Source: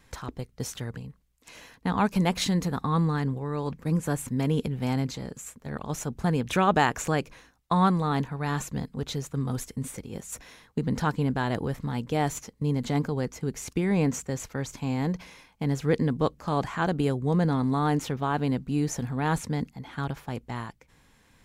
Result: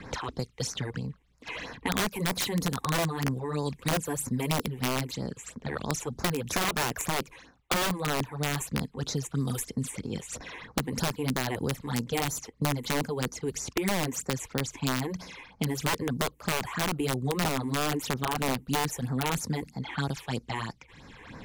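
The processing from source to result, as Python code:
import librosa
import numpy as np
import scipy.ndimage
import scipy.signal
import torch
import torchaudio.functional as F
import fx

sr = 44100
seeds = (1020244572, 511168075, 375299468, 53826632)

y = fx.env_lowpass(x, sr, base_hz=2200.0, full_db=-24.5)
y = fx.high_shelf(y, sr, hz=5600.0, db=8.5)
y = fx.phaser_stages(y, sr, stages=8, low_hz=170.0, high_hz=3200.0, hz=3.1, feedback_pct=15)
y = fx.low_shelf(y, sr, hz=63.0, db=-10.5)
y = (np.mod(10.0 ** (20.5 / 20.0) * y + 1.0, 2.0) - 1.0) / 10.0 ** (20.5 / 20.0)
y = fx.band_squash(y, sr, depth_pct=70)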